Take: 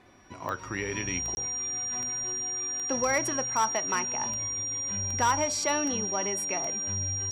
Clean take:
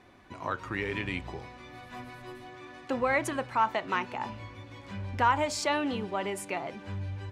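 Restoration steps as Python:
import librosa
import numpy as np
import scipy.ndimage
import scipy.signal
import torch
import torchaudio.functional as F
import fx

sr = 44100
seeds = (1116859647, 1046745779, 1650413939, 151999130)

y = fx.fix_declip(x, sr, threshold_db=-18.0)
y = fx.fix_declick_ar(y, sr, threshold=10.0)
y = fx.notch(y, sr, hz=5700.0, q=30.0)
y = fx.fix_interpolate(y, sr, at_s=(1.35,), length_ms=20.0)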